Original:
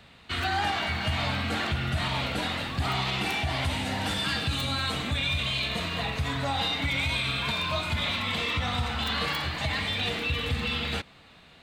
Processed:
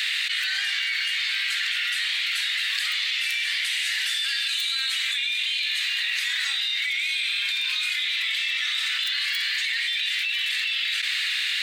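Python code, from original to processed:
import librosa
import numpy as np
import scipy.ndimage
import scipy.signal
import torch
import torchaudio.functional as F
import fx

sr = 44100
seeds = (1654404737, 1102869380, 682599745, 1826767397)

y = scipy.signal.sosfilt(scipy.signal.cheby1(4, 1.0, 1800.0, 'highpass', fs=sr, output='sos'), x)
y = fx.env_flatten(y, sr, amount_pct=100)
y = F.gain(torch.from_numpy(y), 2.0).numpy()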